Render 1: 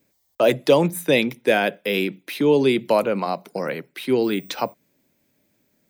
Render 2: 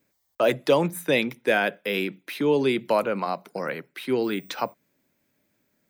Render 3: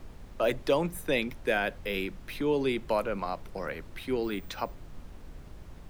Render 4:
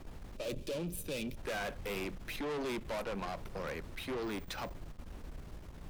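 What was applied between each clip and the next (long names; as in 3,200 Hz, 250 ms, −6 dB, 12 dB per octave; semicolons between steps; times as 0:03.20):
parametric band 1,400 Hz +5.5 dB 1.2 octaves; level −5 dB
background noise brown −37 dBFS; level −6 dB
tube saturation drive 37 dB, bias 0.5; gain on a spectral selection 0:00.36–0:01.36, 630–2,300 Hz −11 dB; level +2 dB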